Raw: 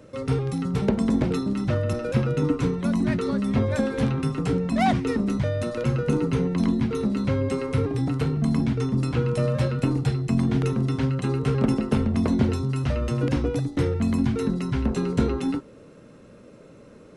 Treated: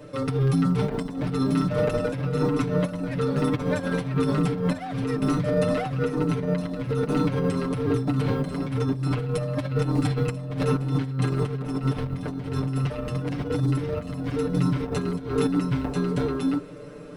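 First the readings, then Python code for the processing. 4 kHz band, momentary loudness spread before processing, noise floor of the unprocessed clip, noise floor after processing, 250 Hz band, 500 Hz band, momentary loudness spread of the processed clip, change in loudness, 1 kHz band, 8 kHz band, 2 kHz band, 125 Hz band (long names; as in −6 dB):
−0.5 dB, 3 LU, −48 dBFS, −35 dBFS, −2.0 dB, +0.5 dB, 5 LU, −1.5 dB, −1.0 dB, −1.0 dB, −0.5 dB, −1.0 dB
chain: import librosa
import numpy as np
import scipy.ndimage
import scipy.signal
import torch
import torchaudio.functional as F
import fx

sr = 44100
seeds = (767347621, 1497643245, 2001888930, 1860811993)

y = 10.0 ** (-16.5 / 20.0) * np.tanh(x / 10.0 ** (-16.5 / 20.0))
y = fx.quant_float(y, sr, bits=6)
y = fx.peak_eq(y, sr, hz=6700.0, db=-6.0, octaves=0.4)
y = fx.hum_notches(y, sr, base_hz=50, count=8)
y = y + 10.0 ** (-4.5 / 20.0) * np.pad(y, (int(990 * sr / 1000.0), 0))[:len(y)]
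y = fx.over_compress(y, sr, threshold_db=-27.0, ratio=-0.5)
y = y + 0.9 * np.pad(y, (int(6.8 * sr / 1000.0), 0))[:len(y)]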